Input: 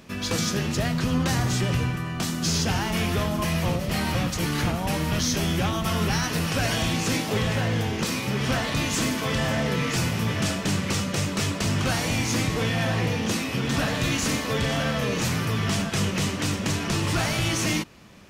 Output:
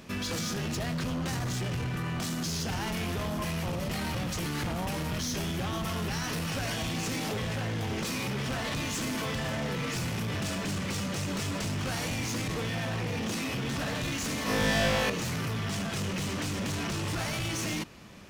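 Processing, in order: limiter -22 dBFS, peak gain reduction 7.5 dB; overloaded stage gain 29 dB; 14.44–15.1 flutter echo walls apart 3.3 m, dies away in 1.4 s

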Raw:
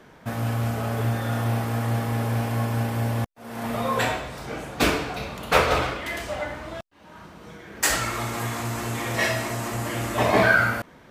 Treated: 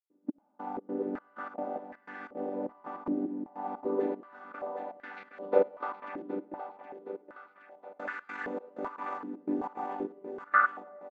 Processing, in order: chord vocoder major triad, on G3; gate -35 dBFS, range -16 dB; 8.19–10.54 negative-ratio compressor -30 dBFS, ratio -0.5; step gate ".xx...xx.xxx..x" 152 bpm -60 dB; feedback echo 0.768 s, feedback 44%, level -8 dB; reverb RT60 5.3 s, pre-delay 30 ms, DRR 19.5 dB; stepped band-pass 2.6 Hz 320–1700 Hz; gain +3 dB

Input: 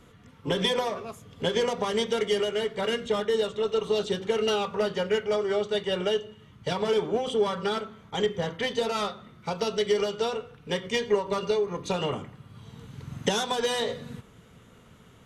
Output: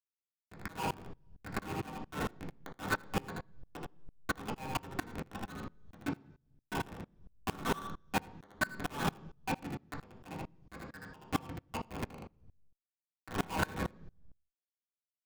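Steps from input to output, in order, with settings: gate with hold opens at -42 dBFS; formant-preserving pitch shift -7.5 st; comb 5.4 ms, depth 98%; compressor 16:1, threshold -26 dBFS, peak gain reduction 11.5 dB; formant shift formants -2 st; elliptic band-pass 800–1600 Hz, stop band 40 dB; Schmitt trigger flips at -35 dBFS; echo 79 ms -8.5 dB; reverb RT60 0.50 s, pre-delay 3 ms, DRR 0.5 dB; dB-ramp tremolo swelling 4.4 Hz, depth 26 dB; gain +15.5 dB

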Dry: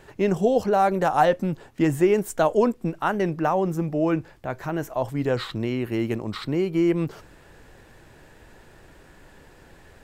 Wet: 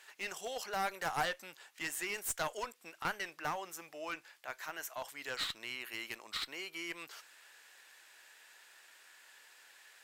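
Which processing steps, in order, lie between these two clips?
Bessel high-pass 2300 Hz, order 2; 2.64–3.05 compressor, threshold -41 dBFS, peak gain reduction 7.5 dB; one-sided clip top -36.5 dBFS; gain +1 dB

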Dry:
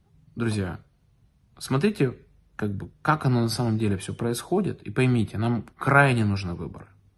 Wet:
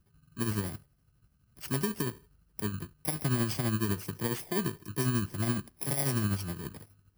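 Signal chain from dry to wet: FFT order left unsorted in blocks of 32 samples; limiter -16 dBFS, peak gain reduction 11 dB; tremolo 12 Hz, depth 49%; gain -3.5 dB

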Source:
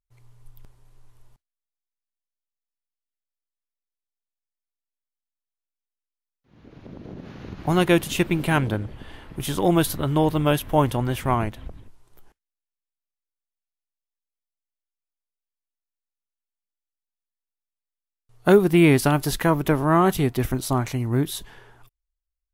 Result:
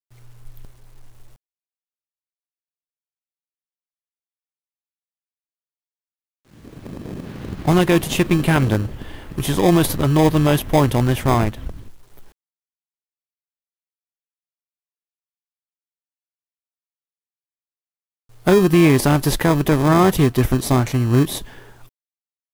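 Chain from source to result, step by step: in parallel at -6 dB: sample-and-hold 31×; on the sum: limiter -8 dBFS, peak gain reduction 7.5 dB; bit-crush 10-bit; gain +4 dB

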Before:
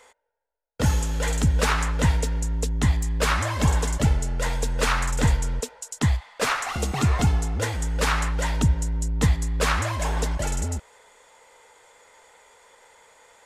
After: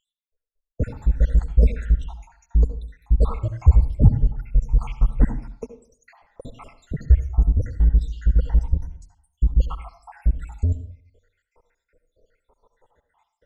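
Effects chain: random spectral dropouts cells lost 83%; tilt -4.5 dB/oct; reverb RT60 0.45 s, pre-delay 64 ms, DRR 10.5 dB; gain -6.5 dB

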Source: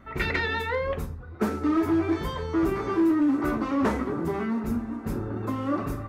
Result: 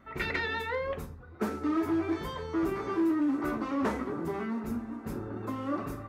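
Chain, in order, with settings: low shelf 120 Hz -7 dB; gain -4.5 dB

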